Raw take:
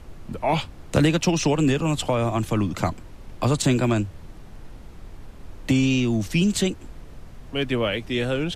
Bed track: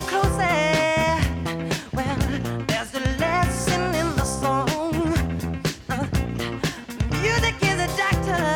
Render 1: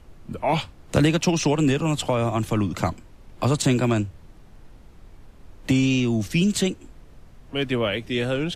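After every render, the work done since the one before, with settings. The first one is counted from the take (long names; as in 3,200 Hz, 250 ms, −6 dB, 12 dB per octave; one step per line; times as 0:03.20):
noise reduction from a noise print 6 dB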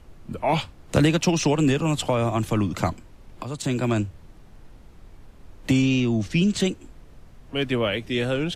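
0:03.43–0:04.03: fade in, from −15.5 dB
0:05.82–0:06.60: high-frequency loss of the air 63 metres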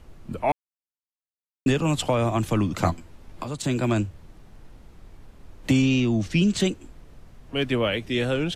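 0:00.52–0:01.66: silence
0:02.81–0:03.49: double-tracking delay 12 ms −4.5 dB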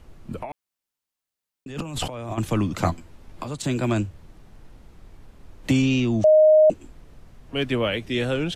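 0:00.42–0:02.38: compressor whose output falls as the input rises −32 dBFS
0:06.24–0:06.70: beep over 620 Hz −10.5 dBFS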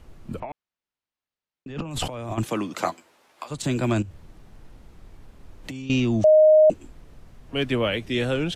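0:00.40–0:01.91: high-frequency loss of the air 150 metres
0:02.43–0:03.50: high-pass filter 230 Hz → 840 Hz
0:04.02–0:05.90: downward compressor, threshold −33 dBFS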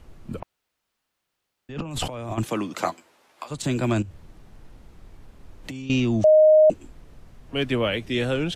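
0:00.43–0:01.69: fill with room tone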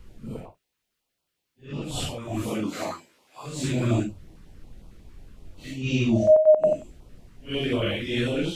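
random phases in long frames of 200 ms
notch on a step sequencer 11 Hz 670–1,800 Hz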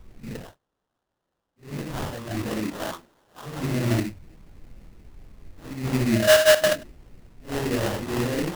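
sample-rate reduction 2,300 Hz, jitter 20%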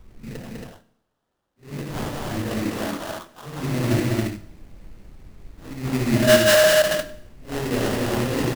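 loudspeakers that aren't time-aligned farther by 29 metres −10 dB, 69 metres −3 dB, 94 metres −3 dB
four-comb reverb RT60 0.71 s, combs from 28 ms, DRR 15.5 dB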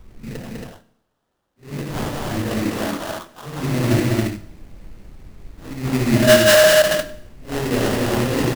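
level +3.5 dB
brickwall limiter −2 dBFS, peak gain reduction 2 dB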